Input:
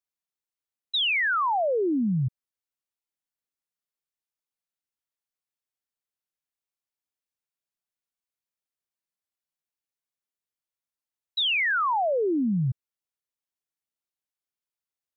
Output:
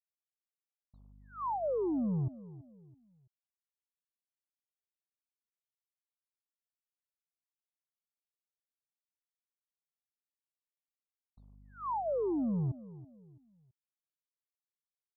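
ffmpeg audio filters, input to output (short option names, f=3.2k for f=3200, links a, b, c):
-filter_complex "[0:a]equalizer=f=710:t=o:w=0.27:g=-7,acompressor=threshold=-26dB:ratio=20,aeval=exprs='val(0)+0.002*(sin(2*PI*50*n/s)+sin(2*PI*2*50*n/s)/2+sin(2*PI*3*50*n/s)/3+sin(2*PI*4*50*n/s)/4+sin(2*PI*5*50*n/s)/5)':c=same,aeval=exprs='sgn(val(0))*max(abs(val(0))-0.00841,0)':c=same,adynamicsmooth=sensitivity=1:basefreq=1.8k,asplit=2[a][b];[b]adelay=331,lowpass=f=1.2k:p=1,volume=-17dB,asplit=2[c][d];[d]adelay=331,lowpass=f=1.2k:p=1,volume=0.36,asplit=2[e][f];[f]adelay=331,lowpass=f=1.2k:p=1,volume=0.36[g];[c][e][g]amix=inputs=3:normalize=0[h];[a][h]amix=inputs=2:normalize=0,aresample=8000,aresample=44100,asuperstop=centerf=2600:order=12:qfactor=0.54,volume=-1.5dB"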